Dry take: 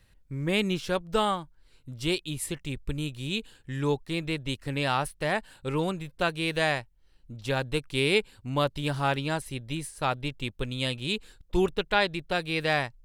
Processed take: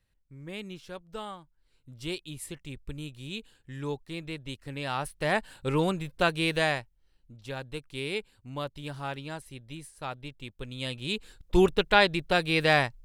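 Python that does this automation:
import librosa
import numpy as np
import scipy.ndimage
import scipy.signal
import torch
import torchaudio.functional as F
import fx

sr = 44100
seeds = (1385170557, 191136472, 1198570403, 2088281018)

y = fx.gain(x, sr, db=fx.line((1.33, -13.5), (1.98, -7.0), (4.82, -7.0), (5.38, 2.0), (6.43, 2.0), (7.4, -9.0), (10.51, -9.0), (11.58, 3.5)))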